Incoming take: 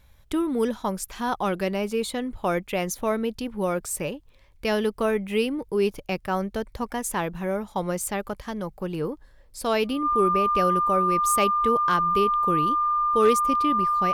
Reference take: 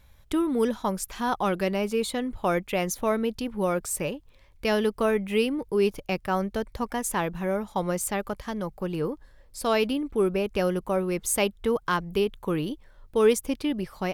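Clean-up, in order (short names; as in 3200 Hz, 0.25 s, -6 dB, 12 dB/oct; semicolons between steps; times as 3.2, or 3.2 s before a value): clip repair -11.5 dBFS; notch 1200 Hz, Q 30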